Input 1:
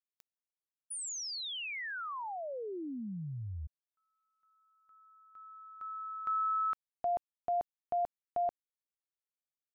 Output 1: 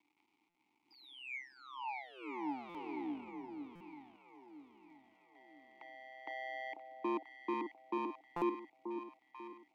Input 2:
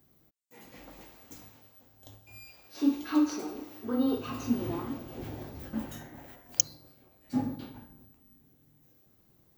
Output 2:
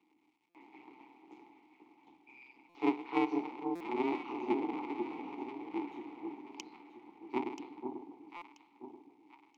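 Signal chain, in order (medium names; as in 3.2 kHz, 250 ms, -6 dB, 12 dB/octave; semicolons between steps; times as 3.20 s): cycle switcher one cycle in 2, inverted; three-band isolator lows -19 dB, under 250 Hz, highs -13 dB, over 4.4 kHz; AM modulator 130 Hz, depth 65%; crackle 450 per s -57 dBFS; vowel filter u; echo whose repeats swap between lows and highs 491 ms, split 910 Hz, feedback 60%, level -5 dB; buffer glitch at 0.49/2.69/3.75/8.36 s, samples 256, times 9; trim +12.5 dB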